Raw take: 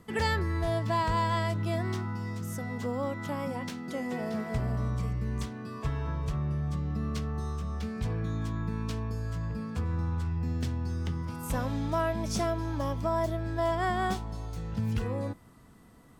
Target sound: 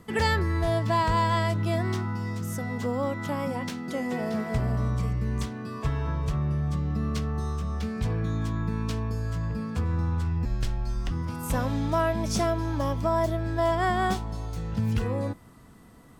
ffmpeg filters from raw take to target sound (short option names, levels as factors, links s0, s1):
-filter_complex "[0:a]asettb=1/sr,asplit=3[s0][s1][s2];[s0]atrim=end=10.454[s3];[s1]atrim=start=10.45:end=11.11,asetpts=PTS-STARTPTS,afade=t=in:d=0.004:c=qsin,afade=t=out:st=0.656:d=0.004:c=qsin,afreqshift=-130[s4];[s2]atrim=start=11.106[s5];[s3][s4]acrossfade=d=0.004:c1=hsin:c2=qsin[s6];[s6][s5]acrossfade=d=0.004:c1=qsin:c2=hsin,volume=1.58"